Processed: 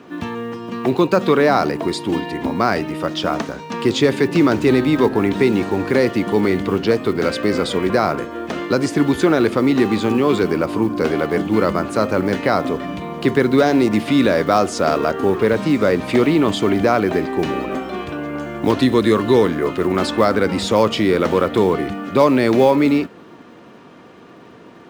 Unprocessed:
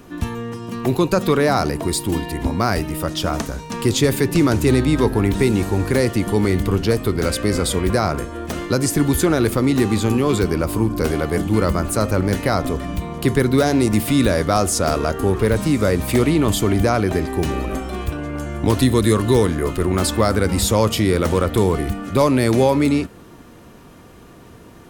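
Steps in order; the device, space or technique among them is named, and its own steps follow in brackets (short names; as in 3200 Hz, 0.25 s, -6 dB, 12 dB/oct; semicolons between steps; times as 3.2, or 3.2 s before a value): early digital voice recorder (BPF 200–3900 Hz; block floating point 7-bit); gain +3 dB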